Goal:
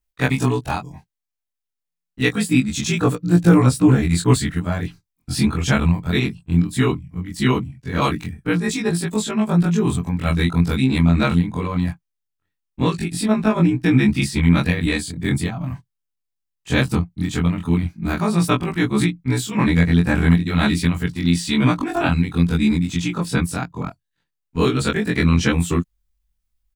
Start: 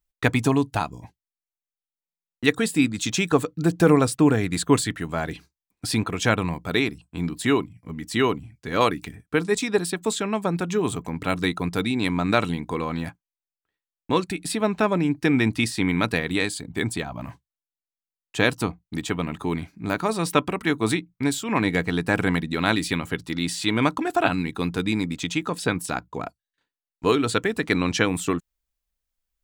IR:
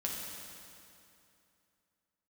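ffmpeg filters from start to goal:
-af "afftfilt=real='re':imag='-im':win_size=2048:overlap=0.75,atempo=1.1,asubboost=boost=3.5:cutoff=210,volume=6dB"

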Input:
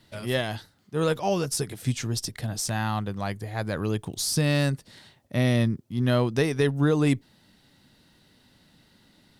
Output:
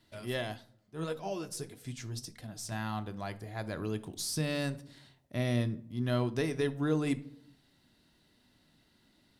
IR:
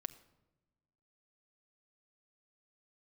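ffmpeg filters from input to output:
-filter_complex "[1:a]atrim=start_sample=2205,asetrate=83790,aresample=44100[a];[0:a][a]afir=irnorm=-1:irlink=0,asettb=1/sr,asplit=3[b][c][d];[b]atrim=end=0.544[e];[c]atrim=start=0.54:end=2.72,asetpts=PTS-STARTPTS,afade=t=in:d=0.004:c=qsin,afade=t=out:st=2.176:d=0.004:c=qsin,flanger=delay=3.8:depth=5.9:regen=51:speed=1.6:shape=sinusoidal[f];[d]atrim=start=2.716[g];[e][f]acrossfade=d=0.004:c1=hsin:c2=qsin[h];[h][g]acrossfade=d=0.004:c1=qsin:c2=hsin"

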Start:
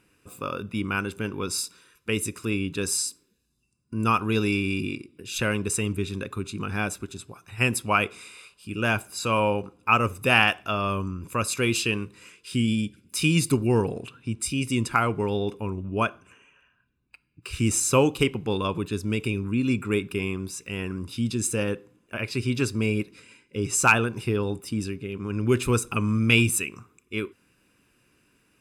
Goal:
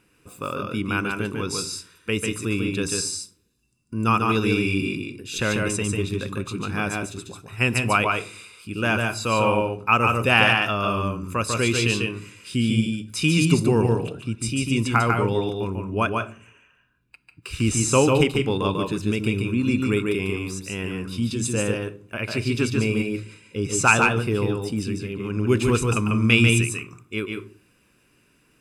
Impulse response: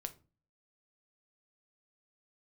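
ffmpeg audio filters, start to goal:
-filter_complex "[0:a]acrossover=split=9100[a][b];[b]acompressor=threshold=-50dB:ratio=4:attack=1:release=60[c];[a][c]amix=inputs=2:normalize=0,asplit=2[d][e];[1:a]atrim=start_sample=2205,asetrate=41454,aresample=44100,adelay=145[f];[e][f]afir=irnorm=-1:irlink=0,volume=-0.5dB[g];[d][g]amix=inputs=2:normalize=0,volume=1.5dB"

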